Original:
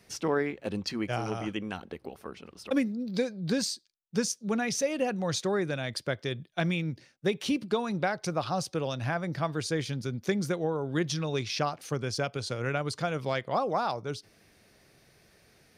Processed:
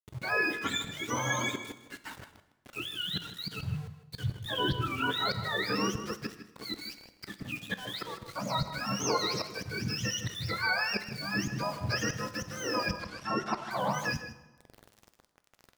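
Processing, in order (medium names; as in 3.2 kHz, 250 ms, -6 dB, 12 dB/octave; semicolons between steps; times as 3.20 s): spectrum inverted on a logarithmic axis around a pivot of 850 Hz; hum notches 50/100/150 Hz; slow attack 473 ms; in parallel at -3 dB: peak limiter -32.5 dBFS, peak gain reduction 11 dB; on the sum: small samples zeroed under -46 dBFS; 12.96–13.71 s: distance through air 60 m; echo from a far wall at 27 m, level -12 dB; plate-style reverb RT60 1.1 s, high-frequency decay 0.85×, DRR 11.5 dB; trim +2.5 dB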